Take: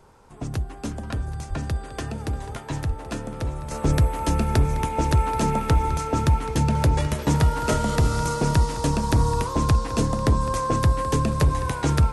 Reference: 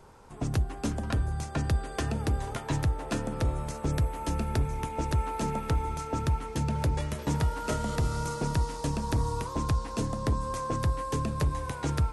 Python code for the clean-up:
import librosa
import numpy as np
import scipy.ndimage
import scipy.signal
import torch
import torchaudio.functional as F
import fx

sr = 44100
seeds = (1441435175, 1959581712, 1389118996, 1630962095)

y = fx.fix_deplosive(x, sr, at_s=(1.49, 2.88, 3.86, 7.71))
y = fx.fix_echo_inverse(y, sr, delay_ms=780, level_db=-15.0)
y = fx.fix_level(y, sr, at_s=3.71, step_db=-8.0)